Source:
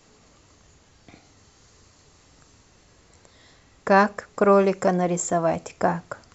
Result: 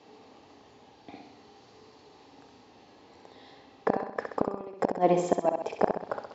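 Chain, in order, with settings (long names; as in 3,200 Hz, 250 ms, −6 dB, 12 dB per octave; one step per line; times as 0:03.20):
loudspeaker in its box 150–4,500 Hz, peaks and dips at 160 Hz −6 dB, 270 Hz +6 dB, 430 Hz +6 dB, 820 Hz +10 dB, 1,400 Hz −7 dB, 2,100 Hz −3 dB
gate with flip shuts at −9 dBFS, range −27 dB
flutter between parallel walls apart 11.1 metres, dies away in 0.68 s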